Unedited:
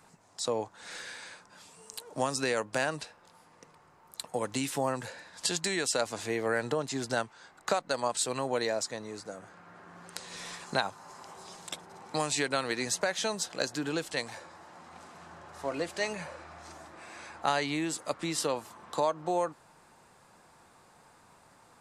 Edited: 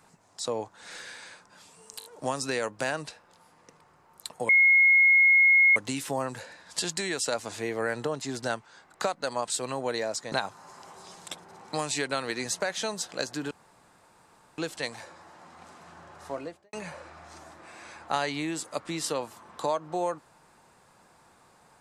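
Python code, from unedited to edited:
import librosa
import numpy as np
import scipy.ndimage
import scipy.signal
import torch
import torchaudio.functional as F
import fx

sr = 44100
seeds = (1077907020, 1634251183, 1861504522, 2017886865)

y = fx.studio_fade_out(x, sr, start_s=15.58, length_s=0.49)
y = fx.edit(y, sr, fx.stutter(start_s=1.99, slice_s=0.02, count=4),
    fx.insert_tone(at_s=4.43, length_s=1.27, hz=2160.0, db=-15.5),
    fx.cut(start_s=8.99, length_s=1.74),
    fx.insert_room_tone(at_s=13.92, length_s=1.07), tone=tone)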